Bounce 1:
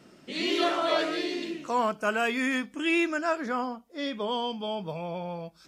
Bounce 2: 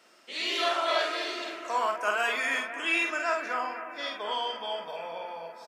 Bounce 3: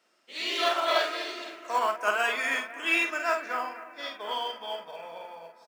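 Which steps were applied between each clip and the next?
high-pass filter 710 Hz 12 dB per octave; double-tracking delay 48 ms −4 dB; bucket-brigade delay 249 ms, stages 4,096, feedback 76%, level −12 dB
in parallel at −5.5 dB: floating-point word with a short mantissa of 2 bits; on the sum: expander for the loud parts 1.5 to 1, over −45 dBFS; level −1 dB

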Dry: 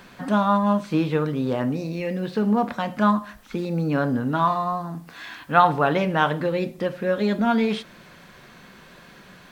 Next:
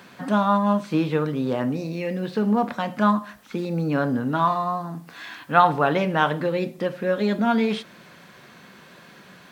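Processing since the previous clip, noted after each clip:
high-pass filter 110 Hz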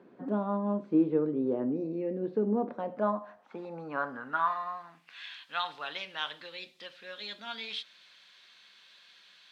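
band-pass filter sweep 360 Hz → 3,700 Hz, 0:02.57–0:05.50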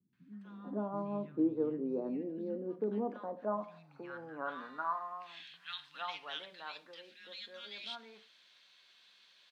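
three-band delay without the direct sound lows, highs, mids 130/450 ms, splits 160/1,600 Hz
level −5.5 dB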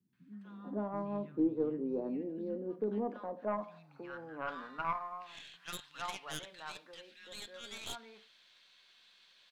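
stylus tracing distortion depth 0.15 ms

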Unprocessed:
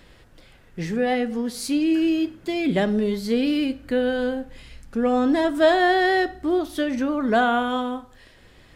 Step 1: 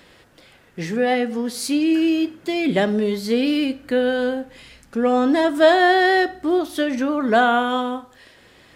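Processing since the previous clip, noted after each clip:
high-pass filter 220 Hz 6 dB per octave
level +4 dB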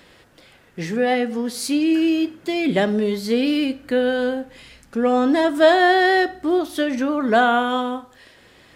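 no processing that can be heard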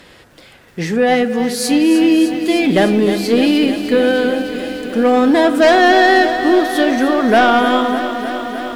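sine wavefolder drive 5 dB, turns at −4 dBFS
feedback echo at a low word length 304 ms, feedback 80%, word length 7 bits, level −10.5 dB
level −2 dB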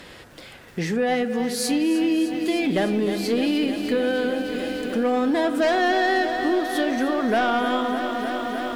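downward compressor 2 to 1, threshold −27 dBFS, peak gain reduction 11 dB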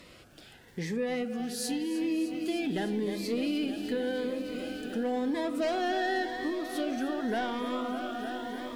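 phaser whose notches keep moving one way rising 0.9 Hz
level −8 dB

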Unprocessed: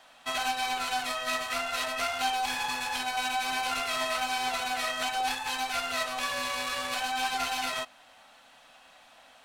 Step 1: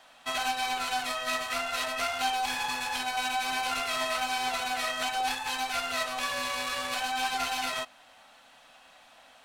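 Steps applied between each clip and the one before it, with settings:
no processing that can be heard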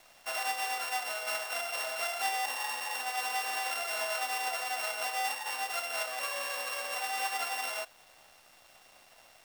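samples sorted by size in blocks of 16 samples
four-pole ladder high-pass 400 Hz, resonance 30%
bit reduction 10 bits
level +2.5 dB

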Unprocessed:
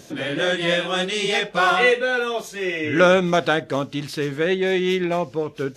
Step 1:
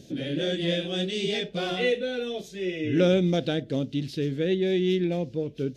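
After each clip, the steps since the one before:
drawn EQ curve 260 Hz 0 dB, 590 Hz −8 dB, 1,100 Hz −26 dB, 1,600 Hz −16 dB, 3,500 Hz −5 dB, 8,400 Hz −13 dB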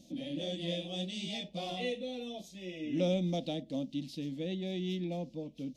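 phaser with its sweep stopped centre 410 Hz, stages 6
level −6 dB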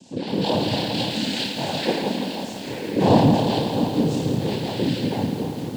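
flutter between parallel walls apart 4.8 metres, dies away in 0.85 s
cochlear-implant simulation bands 8
feedback echo at a low word length 168 ms, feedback 80%, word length 8 bits, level −9.5 dB
level +8.5 dB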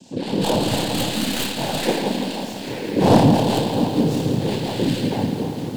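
stylus tracing distortion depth 0.13 ms
level +2 dB

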